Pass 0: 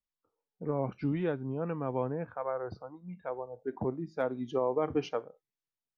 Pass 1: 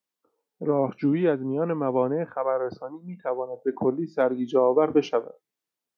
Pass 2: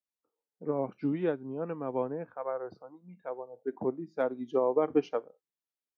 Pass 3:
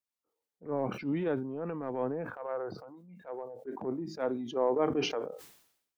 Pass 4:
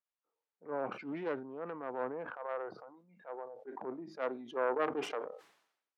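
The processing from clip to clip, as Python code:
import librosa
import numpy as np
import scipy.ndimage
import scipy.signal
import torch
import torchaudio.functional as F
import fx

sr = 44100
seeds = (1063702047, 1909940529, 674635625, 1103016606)

y1 = scipy.signal.sosfilt(scipy.signal.butter(2, 260.0, 'highpass', fs=sr, output='sos'), x)
y1 = fx.low_shelf(y1, sr, hz=480.0, db=7.5)
y1 = F.gain(torch.from_numpy(y1), 6.5).numpy()
y2 = fx.upward_expand(y1, sr, threshold_db=-31.0, expansion=1.5)
y2 = F.gain(torch.from_numpy(y2), -5.0).numpy()
y3 = fx.transient(y2, sr, attack_db=-9, sustain_db=5)
y3 = fx.sustainer(y3, sr, db_per_s=78.0)
y4 = fx.self_delay(y3, sr, depth_ms=0.23)
y4 = fx.bandpass_q(y4, sr, hz=1100.0, q=0.71)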